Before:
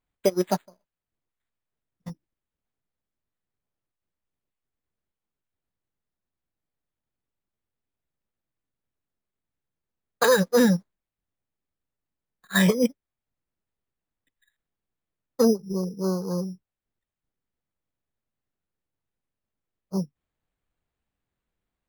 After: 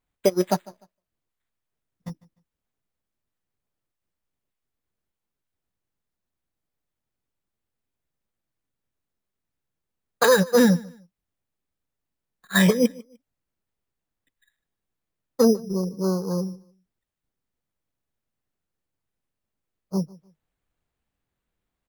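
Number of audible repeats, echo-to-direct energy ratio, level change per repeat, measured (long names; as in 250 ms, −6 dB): 2, −22.0 dB, −11.5 dB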